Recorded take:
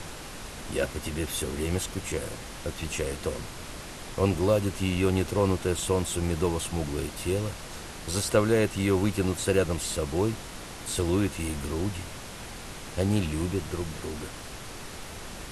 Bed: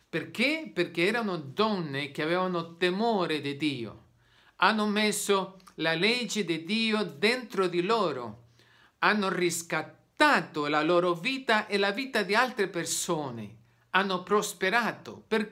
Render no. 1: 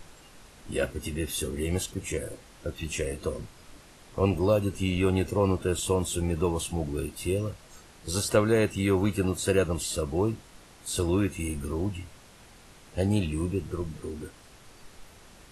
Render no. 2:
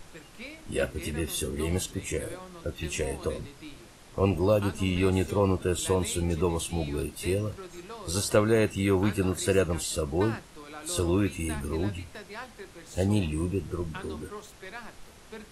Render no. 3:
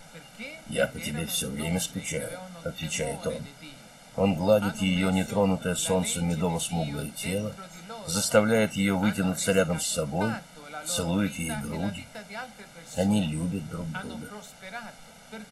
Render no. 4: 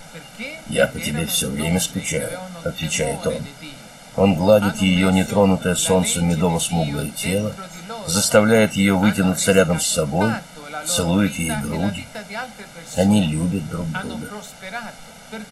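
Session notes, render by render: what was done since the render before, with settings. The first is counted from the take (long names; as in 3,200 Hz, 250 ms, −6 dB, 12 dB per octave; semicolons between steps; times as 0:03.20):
noise reduction from a noise print 12 dB
mix in bed −16.5 dB
low shelf with overshoot 120 Hz −12.5 dB, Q 1.5; comb filter 1.4 ms, depth 99%
level +8.5 dB; brickwall limiter −2 dBFS, peak gain reduction 2.5 dB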